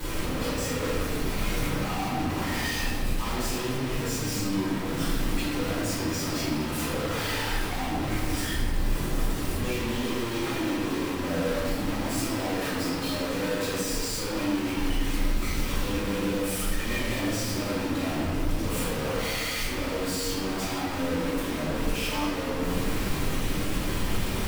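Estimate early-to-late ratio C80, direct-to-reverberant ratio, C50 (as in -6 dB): 1.0 dB, -13.5 dB, -1.5 dB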